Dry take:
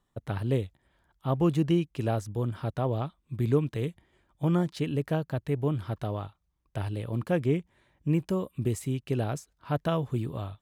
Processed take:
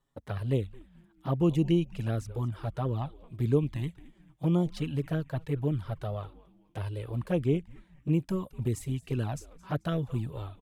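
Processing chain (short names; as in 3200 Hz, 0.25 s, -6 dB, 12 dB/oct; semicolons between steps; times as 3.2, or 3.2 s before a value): frequency-shifting echo 0.219 s, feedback 37%, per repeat -150 Hz, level -19.5 dB; envelope flanger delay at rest 7.3 ms, full sweep at -21 dBFS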